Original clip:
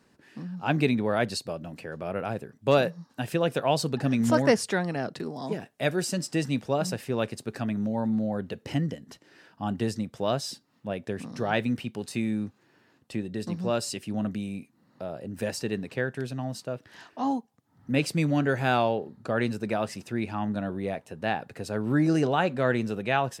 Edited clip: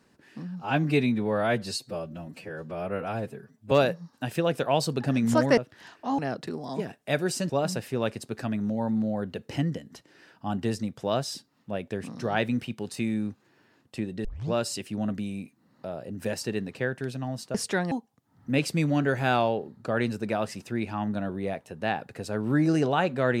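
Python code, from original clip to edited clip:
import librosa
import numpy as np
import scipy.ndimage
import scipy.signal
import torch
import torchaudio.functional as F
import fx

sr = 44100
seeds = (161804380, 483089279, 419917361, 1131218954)

y = fx.edit(x, sr, fx.stretch_span(start_s=0.61, length_s=2.07, factor=1.5),
    fx.swap(start_s=4.54, length_s=0.37, other_s=16.71, other_length_s=0.61),
    fx.cut(start_s=6.22, length_s=0.44),
    fx.tape_start(start_s=13.41, length_s=0.27), tone=tone)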